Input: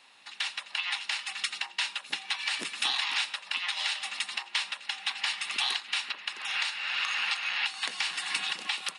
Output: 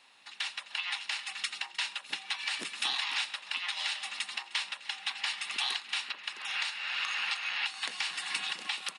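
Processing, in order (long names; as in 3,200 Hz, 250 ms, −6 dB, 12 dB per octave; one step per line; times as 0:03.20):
single-tap delay 306 ms −19 dB
level −3 dB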